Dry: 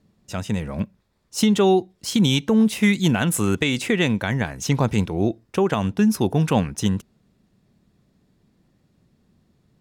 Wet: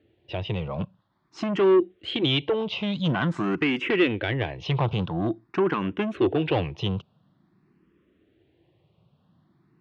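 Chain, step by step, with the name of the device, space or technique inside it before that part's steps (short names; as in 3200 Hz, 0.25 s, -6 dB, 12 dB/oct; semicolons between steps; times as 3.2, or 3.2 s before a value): barber-pole phaser into a guitar amplifier (endless phaser +0.48 Hz; soft clip -21 dBFS, distortion -11 dB; speaker cabinet 87–3500 Hz, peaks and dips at 220 Hz -8 dB, 340 Hz +8 dB, 1100 Hz +3 dB, 3000 Hz +6 dB); gain +2.5 dB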